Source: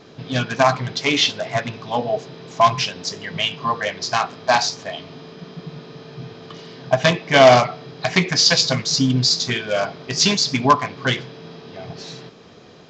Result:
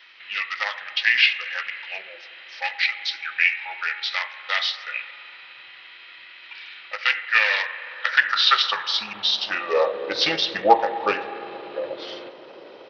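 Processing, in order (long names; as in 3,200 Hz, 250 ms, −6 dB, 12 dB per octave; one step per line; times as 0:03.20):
high-shelf EQ 5,000 Hz −4 dB
in parallel at −1 dB: downward compressor 20 to 1, threshold −27 dBFS, peak gain reduction 21.5 dB
on the sum: spring reverb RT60 2.9 s, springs 34/59 ms, chirp 60 ms, DRR 10.5 dB
high-pass filter sweep 2,500 Hz → 620 Hz, 0:07.77–0:10.09
pitch shifter −4 semitones
level −4 dB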